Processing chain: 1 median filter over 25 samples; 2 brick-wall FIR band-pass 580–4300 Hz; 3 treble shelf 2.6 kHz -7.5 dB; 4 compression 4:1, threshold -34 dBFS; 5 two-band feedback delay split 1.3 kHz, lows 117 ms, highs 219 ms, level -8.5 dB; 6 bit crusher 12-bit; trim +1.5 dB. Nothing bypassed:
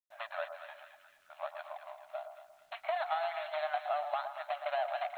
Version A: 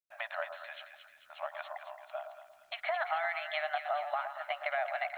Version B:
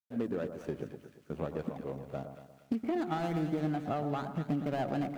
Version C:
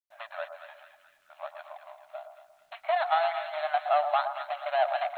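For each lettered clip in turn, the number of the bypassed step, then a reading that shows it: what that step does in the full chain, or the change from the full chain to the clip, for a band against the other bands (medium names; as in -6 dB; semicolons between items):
1, 2 kHz band +6.5 dB; 2, 500 Hz band +5.5 dB; 4, 1 kHz band +1.5 dB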